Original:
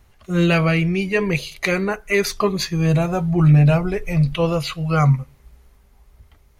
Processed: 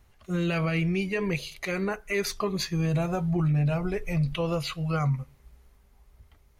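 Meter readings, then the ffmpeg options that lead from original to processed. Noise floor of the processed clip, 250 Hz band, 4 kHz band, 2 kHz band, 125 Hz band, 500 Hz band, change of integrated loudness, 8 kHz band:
-60 dBFS, -8.5 dB, -7.5 dB, -9.5 dB, -10.0 dB, -9.0 dB, -9.0 dB, -7.0 dB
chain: -af "alimiter=limit=0.224:level=0:latency=1:release=92,volume=0.501"

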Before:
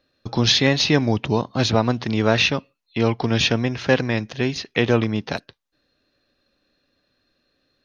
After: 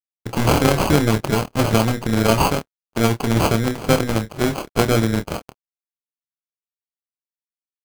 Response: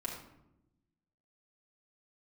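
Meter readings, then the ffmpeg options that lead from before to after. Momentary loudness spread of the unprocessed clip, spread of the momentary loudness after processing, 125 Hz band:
10 LU, 8 LU, +2.5 dB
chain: -filter_complex "[0:a]acrusher=samples=24:mix=1:aa=0.000001,acontrast=53,tremolo=f=240:d=0.824,aeval=exprs='sgn(val(0))*max(abs(val(0))-0.00531,0)':c=same,asplit=2[s0][s1];[s1]adelay=27,volume=0.376[s2];[s0][s2]amix=inputs=2:normalize=0"

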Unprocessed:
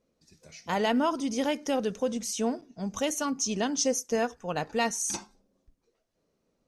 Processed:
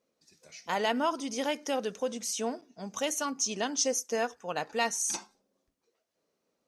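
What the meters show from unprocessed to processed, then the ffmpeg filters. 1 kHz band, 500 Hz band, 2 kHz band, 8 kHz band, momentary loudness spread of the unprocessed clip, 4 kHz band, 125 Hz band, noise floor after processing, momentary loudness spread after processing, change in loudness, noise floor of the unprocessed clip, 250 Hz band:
-1.0 dB, -2.5 dB, -0.5 dB, 0.0 dB, 7 LU, 0.0 dB, -9.0 dB, -81 dBFS, 8 LU, -2.0 dB, -77 dBFS, -6.5 dB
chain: -af "highpass=f=480:p=1"

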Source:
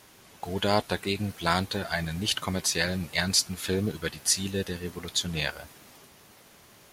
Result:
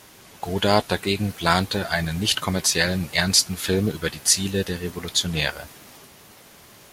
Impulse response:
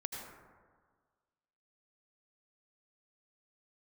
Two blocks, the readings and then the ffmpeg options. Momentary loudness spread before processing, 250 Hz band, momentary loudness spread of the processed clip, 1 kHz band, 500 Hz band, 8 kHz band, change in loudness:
9 LU, +6.0 dB, 9 LU, +6.0 dB, +6.0 dB, +6.5 dB, +6.0 dB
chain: -af "volume=2" -ar 44100 -c:a libvorbis -b:a 64k

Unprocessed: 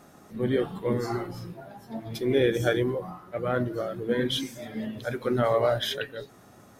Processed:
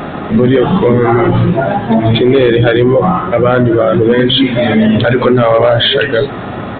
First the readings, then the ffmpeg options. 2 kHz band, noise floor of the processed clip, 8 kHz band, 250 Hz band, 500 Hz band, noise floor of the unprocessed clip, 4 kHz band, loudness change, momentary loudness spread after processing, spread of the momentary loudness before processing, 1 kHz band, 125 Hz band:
+18.0 dB, -22 dBFS, under -20 dB, +20.0 dB, +17.5 dB, -53 dBFS, +18.5 dB, +18.0 dB, 4 LU, 16 LU, +19.5 dB, +20.5 dB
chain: -af "acompressor=threshold=0.0224:ratio=2,aresample=8000,volume=16.8,asoftclip=hard,volume=0.0596,aresample=44100,alimiter=level_in=42.2:limit=0.891:release=50:level=0:latency=1,volume=0.891"

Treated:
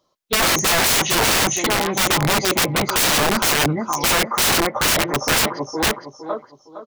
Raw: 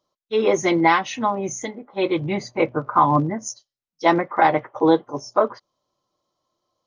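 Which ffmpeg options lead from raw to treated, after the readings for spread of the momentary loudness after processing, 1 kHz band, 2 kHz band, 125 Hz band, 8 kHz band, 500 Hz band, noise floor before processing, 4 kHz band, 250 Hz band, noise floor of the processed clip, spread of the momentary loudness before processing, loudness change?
6 LU, -1.0 dB, +8.0 dB, +3.5 dB, +16.5 dB, -2.0 dB, under -85 dBFS, +16.5 dB, -1.5 dB, -56 dBFS, 11 LU, +4.0 dB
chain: -af "aecho=1:1:461|922|1383|1844:0.501|0.15|0.0451|0.0135,aeval=exprs='(mod(10*val(0)+1,2)-1)/10':c=same,volume=2.51"

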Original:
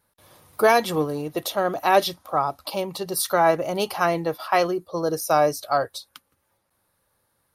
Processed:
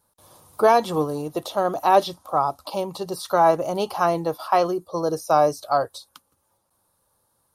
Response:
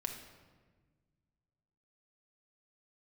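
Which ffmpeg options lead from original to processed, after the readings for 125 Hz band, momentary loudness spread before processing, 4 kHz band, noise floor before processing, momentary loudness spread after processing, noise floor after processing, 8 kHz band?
0.0 dB, 9 LU, -4.0 dB, -72 dBFS, 11 LU, -70 dBFS, -7.0 dB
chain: -filter_complex "[0:a]acrossover=split=4200[s0][s1];[s1]acompressor=threshold=0.00708:ratio=4:attack=1:release=60[s2];[s0][s2]amix=inputs=2:normalize=0,equalizer=f=1000:t=o:w=1:g=5,equalizer=f=2000:t=o:w=1:g=-10,equalizer=f=8000:t=o:w=1:g=6"

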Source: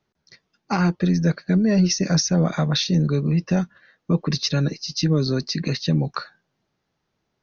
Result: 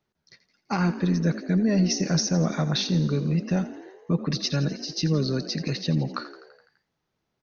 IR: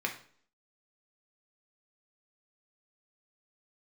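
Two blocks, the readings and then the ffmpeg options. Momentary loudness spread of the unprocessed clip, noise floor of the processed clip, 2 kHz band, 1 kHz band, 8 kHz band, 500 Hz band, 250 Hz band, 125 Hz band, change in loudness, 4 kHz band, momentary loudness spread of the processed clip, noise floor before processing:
6 LU, -79 dBFS, -3.5 dB, -3.5 dB, no reading, -3.5 dB, -3.5 dB, -4.0 dB, -4.0 dB, -4.0 dB, 7 LU, -76 dBFS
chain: -filter_complex "[0:a]asplit=8[s0][s1][s2][s3][s4][s5][s6][s7];[s1]adelay=84,afreqshift=49,volume=0.188[s8];[s2]adelay=168,afreqshift=98,volume=0.12[s9];[s3]adelay=252,afreqshift=147,volume=0.0767[s10];[s4]adelay=336,afreqshift=196,volume=0.0495[s11];[s5]adelay=420,afreqshift=245,volume=0.0316[s12];[s6]adelay=504,afreqshift=294,volume=0.0202[s13];[s7]adelay=588,afreqshift=343,volume=0.0129[s14];[s0][s8][s9][s10][s11][s12][s13][s14]amix=inputs=8:normalize=0,volume=0.631"

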